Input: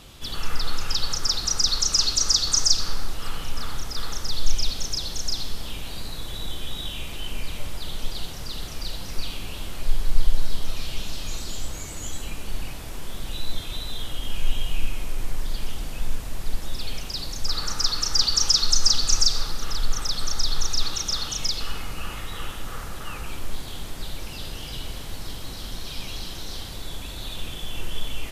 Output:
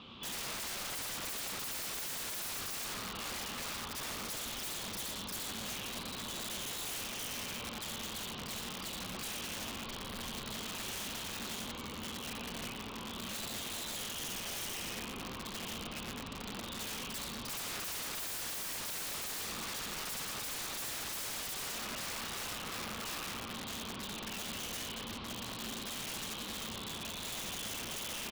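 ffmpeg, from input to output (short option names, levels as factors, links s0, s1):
-filter_complex "[0:a]aemphasis=mode=reproduction:type=50kf,asplit=2[s0][s1];[s1]aecho=0:1:116:0.316[s2];[s0][s2]amix=inputs=2:normalize=0,aexciter=amount=2.2:drive=6.3:freq=2700,highpass=130,equalizer=f=140:t=q:w=4:g=-6,equalizer=f=220:t=q:w=4:g=9,equalizer=f=320:t=q:w=4:g=-3,equalizer=f=660:t=q:w=4:g=-7,equalizer=f=1100:t=q:w=4:g=7,equalizer=f=1800:t=q:w=4:g=-6,lowpass=f=3500:w=0.5412,lowpass=f=3500:w=1.3066,asplit=2[s3][s4];[s4]adelay=90,lowpass=f=1400:p=1,volume=0.562,asplit=2[s5][s6];[s6]adelay=90,lowpass=f=1400:p=1,volume=0.46,asplit=2[s7][s8];[s8]adelay=90,lowpass=f=1400:p=1,volume=0.46,asplit=2[s9][s10];[s10]adelay=90,lowpass=f=1400:p=1,volume=0.46,asplit=2[s11][s12];[s12]adelay=90,lowpass=f=1400:p=1,volume=0.46,asplit=2[s13][s14];[s14]adelay=90,lowpass=f=1400:p=1,volume=0.46[s15];[s5][s7][s9][s11][s13][s15]amix=inputs=6:normalize=0[s16];[s3][s16]amix=inputs=2:normalize=0,aeval=exprs='(mod(37.6*val(0)+1,2)-1)/37.6':c=same,volume=0.668"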